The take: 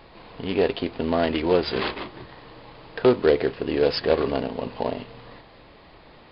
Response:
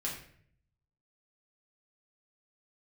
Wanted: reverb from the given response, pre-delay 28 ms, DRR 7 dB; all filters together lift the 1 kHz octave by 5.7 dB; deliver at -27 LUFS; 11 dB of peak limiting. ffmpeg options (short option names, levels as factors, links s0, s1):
-filter_complex "[0:a]equalizer=f=1000:t=o:g=7.5,alimiter=limit=0.188:level=0:latency=1,asplit=2[s0][s1];[1:a]atrim=start_sample=2205,adelay=28[s2];[s1][s2]afir=irnorm=-1:irlink=0,volume=0.335[s3];[s0][s3]amix=inputs=2:normalize=0,volume=0.944"